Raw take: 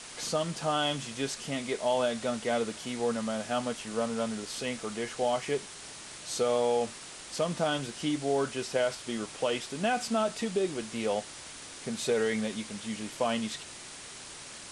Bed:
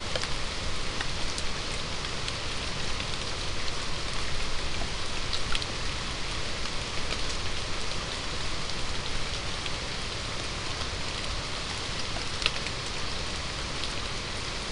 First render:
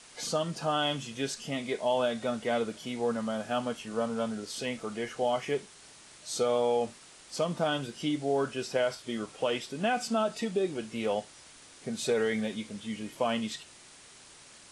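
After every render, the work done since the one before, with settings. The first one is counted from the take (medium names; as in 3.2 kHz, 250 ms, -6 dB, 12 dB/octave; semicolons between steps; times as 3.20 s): noise print and reduce 8 dB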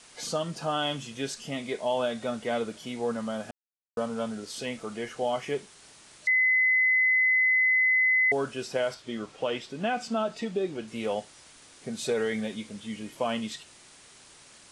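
3.51–3.97 s: mute; 6.27–8.32 s: bleep 2.03 kHz -19.5 dBFS; 8.94–10.88 s: distance through air 59 m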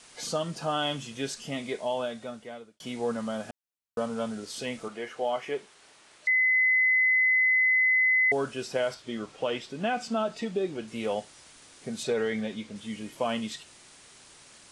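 1.64–2.80 s: fade out; 4.88–6.55 s: tone controls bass -11 dB, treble -7 dB; 12.03–12.76 s: distance through air 56 m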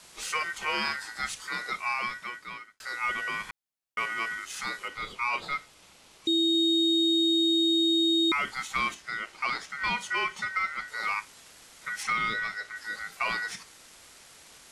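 ring modulator 1.7 kHz; in parallel at -6 dB: saturation -30 dBFS, distortion -9 dB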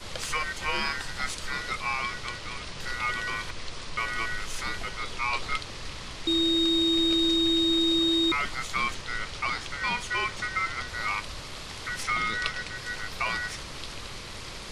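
add bed -6.5 dB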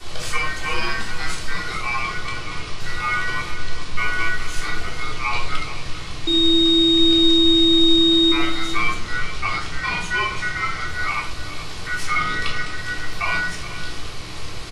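delay 425 ms -13 dB; simulated room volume 660 m³, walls furnished, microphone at 3.5 m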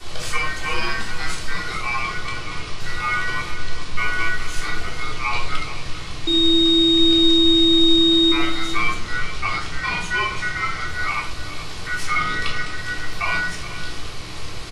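no audible change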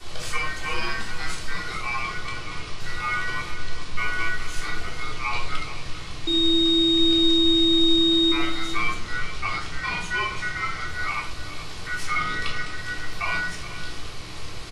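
trim -4 dB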